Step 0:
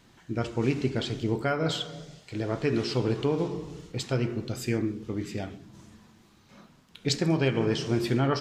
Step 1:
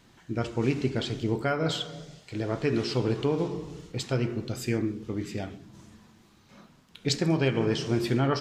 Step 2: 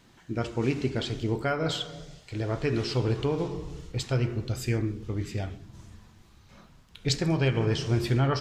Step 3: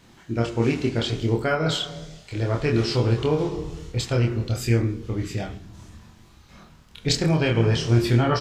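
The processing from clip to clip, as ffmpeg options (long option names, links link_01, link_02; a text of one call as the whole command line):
ffmpeg -i in.wav -af anull out.wav
ffmpeg -i in.wav -af "asubboost=boost=6:cutoff=86" out.wav
ffmpeg -i in.wav -filter_complex "[0:a]asplit=2[link_01][link_02];[link_02]adelay=26,volume=-2.5dB[link_03];[link_01][link_03]amix=inputs=2:normalize=0,volume=3.5dB" out.wav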